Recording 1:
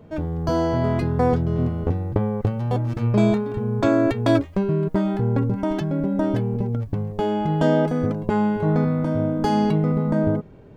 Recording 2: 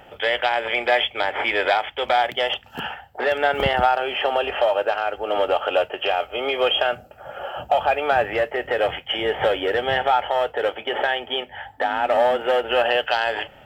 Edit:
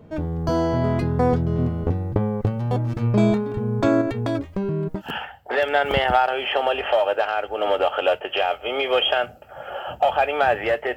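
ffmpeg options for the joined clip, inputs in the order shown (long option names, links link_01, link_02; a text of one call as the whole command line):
ffmpeg -i cue0.wav -i cue1.wav -filter_complex "[0:a]asettb=1/sr,asplit=3[link_01][link_02][link_03];[link_01]atrim=end=4.014[link_04];[link_02]atrim=start=4.01:end=5.02,asetpts=PTS-STARTPTS,afade=type=in:duration=0.004:curve=qsin,afade=type=out:start_time=1.006:duration=0.004:curve=qsin,acompressor=threshold=-21dB:ratio=3:attack=3.2:release=140:knee=1:detection=peak[link_05];[link_03]atrim=start=5.016[link_06];[link_04][link_05]acrossfade=duration=0.004:curve1=hsin:curve2=qsin[link_07];[link_07][link_06]acrossfade=duration=0.004:curve1=qsin:curve2=hsin,apad=whole_dur=10.96,atrim=end=10.96,atrim=end=5.02,asetpts=PTS-STARTPTS[link_08];[1:a]atrim=start=2.63:end=8.65,asetpts=PTS-STARTPTS[link_09];[link_08][link_09]acrossfade=duration=0.08:curve1=tri:curve2=tri" out.wav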